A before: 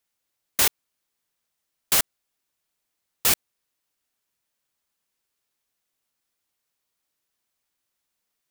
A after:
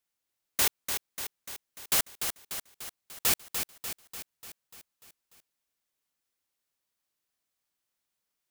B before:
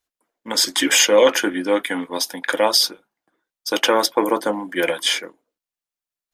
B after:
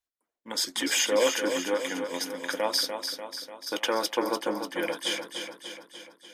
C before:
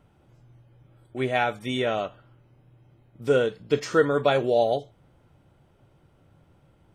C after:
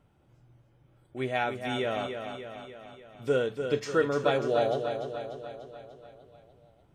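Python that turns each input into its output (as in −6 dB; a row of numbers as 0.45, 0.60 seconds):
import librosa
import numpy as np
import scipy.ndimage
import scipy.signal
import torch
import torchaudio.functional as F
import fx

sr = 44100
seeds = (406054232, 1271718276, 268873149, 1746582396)

y = fx.echo_feedback(x, sr, ms=295, feedback_pct=58, wet_db=-7.0)
y = y * 10.0 ** (-12 / 20.0) / np.max(np.abs(y))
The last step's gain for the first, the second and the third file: −5.5, −10.5, −5.5 decibels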